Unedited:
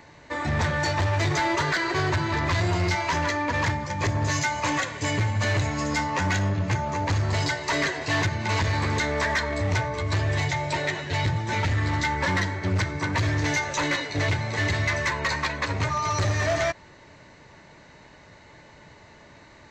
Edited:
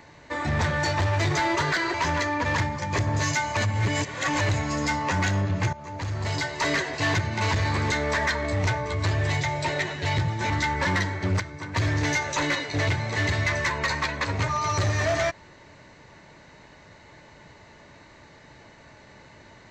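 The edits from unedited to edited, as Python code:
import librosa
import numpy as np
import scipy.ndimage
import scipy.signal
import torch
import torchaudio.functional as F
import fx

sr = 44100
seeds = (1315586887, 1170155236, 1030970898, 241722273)

y = fx.edit(x, sr, fx.cut(start_s=1.94, length_s=1.08),
    fx.reverse_span(start_s=4.65, length_s=0.84),
    fx.fade_in_from(start_s=6.81, length_s=0.9, floor_db=-15.5),
    fx.cut(start_s=11.58, length_s=0.33),
    fx.clip_gain(start_s=12.81, length_s=0.36, db=-8.5), tone=tone)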